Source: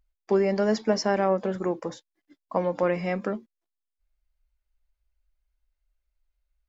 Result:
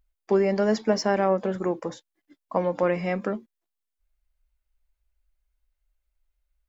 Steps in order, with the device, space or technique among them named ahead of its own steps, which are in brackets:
exciter from parts (in parallel at −12 dB: high-pass filter 4,600 Hz 24 dB per octave + soft clipping −30 dBFS, distortion −12 dB)
on the sum: level +1 dB

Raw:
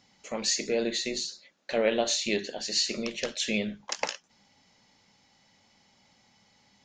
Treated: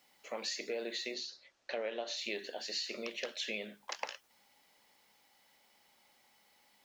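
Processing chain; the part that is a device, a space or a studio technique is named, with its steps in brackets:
baby monitor (band-pass filter 400–4,300 Hz; downward compressor, threshold −31 dBFS, peak gain reduction 10 dB; white noise bed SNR 30 dB)
0:01.14–0:02.17: Chebyshev low-pass filter 6,100 Hz, order 3
level −3.5 dB

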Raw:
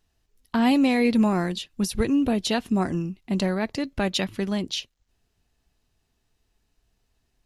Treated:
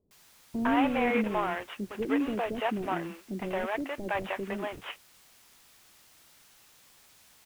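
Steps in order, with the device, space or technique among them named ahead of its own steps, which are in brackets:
army field radio (band-pass filter 390–3,000 Hz; variable-slope delta modulation 16 kbit/s; white noise bed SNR 25 dB)
high-shelf EQ 9,800 Hz −5.5 dB
multiband delay without the direct sound lows, highs 110 ms, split 440 Hz
level +1.5 dB

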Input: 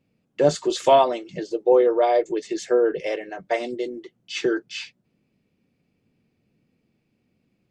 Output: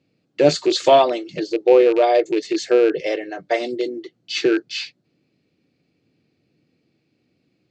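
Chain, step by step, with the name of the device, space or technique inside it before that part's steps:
car door speaker with a rattle (loose part that buzzes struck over −32 dBFS, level −25 dBFS; loudspeaker in its box 100–7,600 Hz, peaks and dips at 210 Hz −7 dB, 310 Hz +5 dB, 960 Hz −5 dB, 4,300 Hz +8 dB)
level +3.5 dB

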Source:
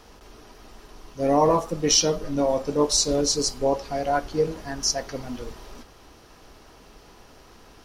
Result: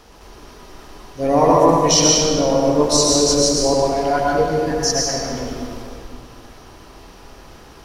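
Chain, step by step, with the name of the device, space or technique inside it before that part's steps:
stairwell (convolution reverb RT60 2.0 s, pre-delay 98 ms, DRR −3 dB)
level +3 dB

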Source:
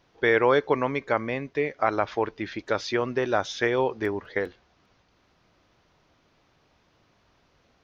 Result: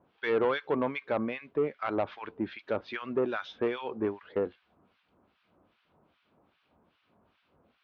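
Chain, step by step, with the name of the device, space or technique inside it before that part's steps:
guitar amplifier with harmonic tremolo (two-band tremolo in antiphase 2.5 Hz, depth 100%, crossover 1,300 Hz; soft clipping −22 dBFS, distortion −11 dB; loudspeaker in its box 83–3,400 Hz, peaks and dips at 120 Hz −7 dB, 220 Hz +4 dB, 1,900 Hz −6 dB)
level +1.5 dB

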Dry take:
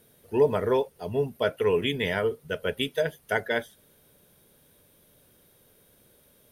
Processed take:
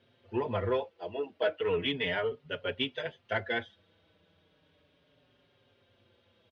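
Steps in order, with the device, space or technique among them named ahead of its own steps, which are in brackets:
0:00.89–0:01.60: low shelf with overshoot 210 Hz −13 dB, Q 1.5
barber-pole flanger into a guitar amplifier (barber-pole flanger 5.2 ms −0.35 Hz; soft clipping −18.5 dBFS, distortion −20 dB; loudspeaker in its box 89–4,000 Hz, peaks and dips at 91 Hz +8 dB, 140 Hz −6 dB, 210 Hz −5 dB, 420 Hz −4 dB, 2,900 Hz +5 dB)

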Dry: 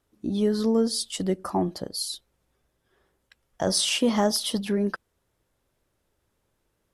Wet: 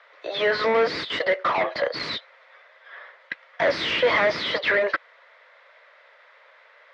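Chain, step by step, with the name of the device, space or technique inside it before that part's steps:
Butterworth high-pass 560 Hz 48 dB per octave
overdrive pedal into a guitar cabinet (mid-hump overdrive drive 36 dB, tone 1,900 Hz, clips at −12 dBFS; loudspeaker in its box 97–4,000 Hz, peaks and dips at 160 Hz +3 dB, 310 Hz +6 dB, 470 Hz +4 dB, 800 Hz −9 dB, 2,000 Hz +9 dB, 2,900 Hz −4 dB)
0:01.19–0:01.88: downward expander −28 dBFS

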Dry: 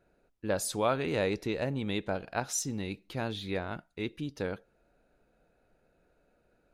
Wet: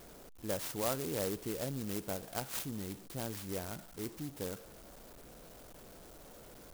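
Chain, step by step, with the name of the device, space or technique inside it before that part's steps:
early CD player with a faulty converter (converter with a step at zero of −41 dBFS; converter with an unsteady clock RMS 0.13 ms)
level −7 dB

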